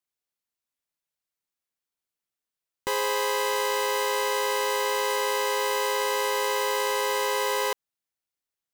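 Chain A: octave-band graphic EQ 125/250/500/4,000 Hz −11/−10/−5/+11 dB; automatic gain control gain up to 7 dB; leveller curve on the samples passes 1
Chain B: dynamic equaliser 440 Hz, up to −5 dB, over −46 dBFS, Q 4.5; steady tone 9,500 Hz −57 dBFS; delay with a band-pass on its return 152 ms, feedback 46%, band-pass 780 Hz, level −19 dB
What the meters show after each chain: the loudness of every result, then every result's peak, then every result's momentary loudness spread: −14.0, −26.0 LKFS; −3.0, −16.5 dBFS; 2, 2 LU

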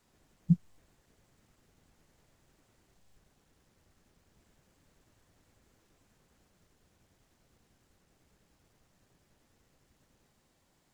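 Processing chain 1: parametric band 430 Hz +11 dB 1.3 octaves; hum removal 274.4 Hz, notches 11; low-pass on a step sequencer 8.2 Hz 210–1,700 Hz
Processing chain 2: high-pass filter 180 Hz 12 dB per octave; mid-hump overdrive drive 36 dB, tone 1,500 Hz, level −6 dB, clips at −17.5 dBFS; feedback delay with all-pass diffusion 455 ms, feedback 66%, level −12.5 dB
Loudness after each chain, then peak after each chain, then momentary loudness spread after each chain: −29.0, −44.0 LKFS; −11.0, −17.5 dBFS; 0, 5 LU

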